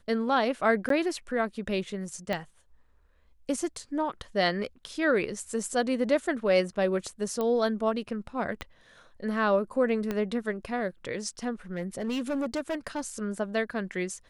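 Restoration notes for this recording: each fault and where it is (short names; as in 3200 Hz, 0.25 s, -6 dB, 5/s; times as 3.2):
0.89–0.9 gap 13 ms
2.33 pop -17 dBFS
7.41 pop -18 dBFS
8.61 pop -20 dBFS
10.11 pop -17 dBFS
11.76–13.1 clipped -26 dBFS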